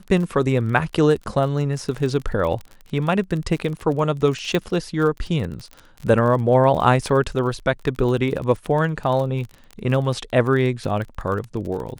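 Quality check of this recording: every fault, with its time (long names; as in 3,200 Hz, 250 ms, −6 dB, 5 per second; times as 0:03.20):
surface crackle 31 per second −28 dBFS
0:04.55: click −10 dBFS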